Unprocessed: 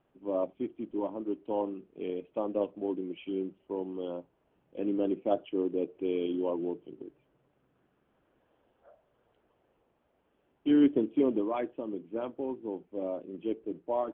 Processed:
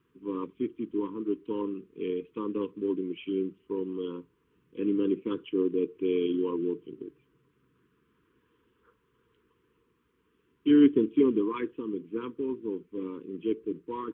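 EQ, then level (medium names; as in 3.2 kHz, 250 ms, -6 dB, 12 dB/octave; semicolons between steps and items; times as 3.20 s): high-pass 46 Hz; elliptic band-stop 460–1000 Hz, stop band 40 dB; +4.5 dB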